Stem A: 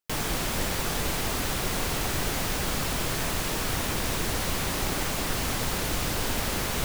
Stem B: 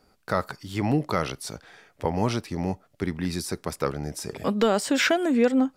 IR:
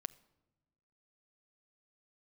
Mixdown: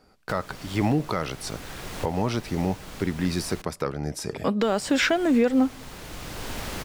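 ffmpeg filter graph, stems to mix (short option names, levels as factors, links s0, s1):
-filter_complex "[0:a]adelay=200,volume=0.531,asplit=3[s0][s1][s2];[s0]atrim=end=3.62,asetpts=PTS-STARTPTS,afade=t=out:st=3.616:d=0.004:c=hsin[s3];[s1]atrim=start=3.62:end=4.63,asetpts=PTS-STARTPTS,volume=0[s4];[s2]atrim=start=4.63,asetpts=PTS-STARTPTS,afade=t=in:d=0.004:c=hsin[s5];[s3][s4][s5]concat=n=3:v=0:a=1,asplit=2[s6][s7];[s7]volume=0.299[s8];[1:a]volume=1.12,asplit=3[s9][s10][s11];[s10]volume=0.376[s12];[s11]apad=whole_len=310633[s13];[s6][s13]sidechaincompress=threshold=0.0112:ratio=3:attack=27:release=650[s14];[2:a]atrim=start_sample=2205[s15];[s8][s12]amix=inputs=2:normalize=0[s16];[s16][s15]afir=irnorm=-1:irlink=0[s17];[s14][s9][s17]amix=inputs=3:normalize=0,highshelf=f=8400:g=-6.5,alimiter=limit=0.237:level=0:latency=1:release=251"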